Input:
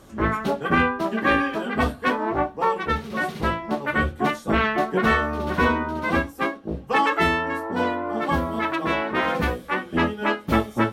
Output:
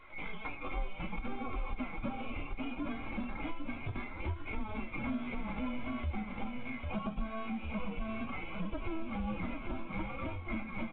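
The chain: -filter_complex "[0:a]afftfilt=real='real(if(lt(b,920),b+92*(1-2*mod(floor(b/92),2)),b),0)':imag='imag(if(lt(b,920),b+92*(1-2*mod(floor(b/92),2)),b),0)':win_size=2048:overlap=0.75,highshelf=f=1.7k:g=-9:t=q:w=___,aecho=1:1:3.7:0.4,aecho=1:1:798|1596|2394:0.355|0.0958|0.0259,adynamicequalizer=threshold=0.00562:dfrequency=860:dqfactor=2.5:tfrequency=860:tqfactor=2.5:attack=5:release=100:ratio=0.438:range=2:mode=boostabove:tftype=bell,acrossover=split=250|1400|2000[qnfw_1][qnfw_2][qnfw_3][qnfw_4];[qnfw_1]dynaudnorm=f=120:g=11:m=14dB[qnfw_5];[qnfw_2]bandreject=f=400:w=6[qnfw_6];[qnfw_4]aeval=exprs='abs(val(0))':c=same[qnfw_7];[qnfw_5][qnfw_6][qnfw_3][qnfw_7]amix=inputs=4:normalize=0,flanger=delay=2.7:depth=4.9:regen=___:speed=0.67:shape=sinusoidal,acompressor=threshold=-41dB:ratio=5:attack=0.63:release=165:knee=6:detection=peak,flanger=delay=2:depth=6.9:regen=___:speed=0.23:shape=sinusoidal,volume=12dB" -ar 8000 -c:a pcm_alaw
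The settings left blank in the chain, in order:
1.5, -30, -58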